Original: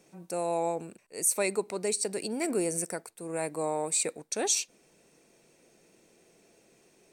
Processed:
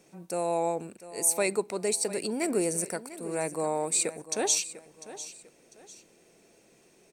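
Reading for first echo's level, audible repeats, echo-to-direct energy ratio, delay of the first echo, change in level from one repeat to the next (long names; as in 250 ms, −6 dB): −15.0 dB, 2, −14.5 dB, 698 ms, −10.0 dB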